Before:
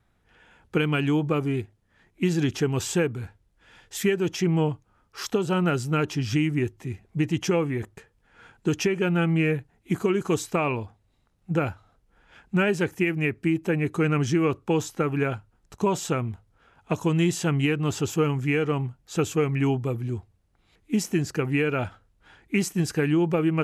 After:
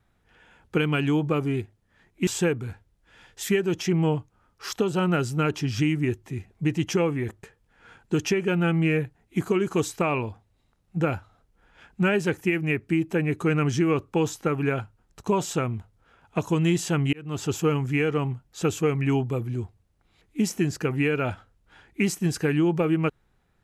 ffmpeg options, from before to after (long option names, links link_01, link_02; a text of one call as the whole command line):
ffmpeg -i in.wav -filter_complex "[0:a]asplit=3[link_01][link_02][link_03];[link_01]atrim=end=2.272[link_04];[link_02]atrim=start=2.808:end=17.67,asetpts=PTS-STARTPTS,afade=type=out:start_time=14.858:duration=0.004:curve=hsin[link_05];[link_03]atrim=start=17.67,asetpts=PTS-STARTPTS,afade=type=in:duration=0.37[link_06];[link_05][link_06]concat=n=2:v=0:a=1[link_07];[link_04][link_07]acrossfade=duration=0.004:curve1=hsin:curve2=hsin" out.wav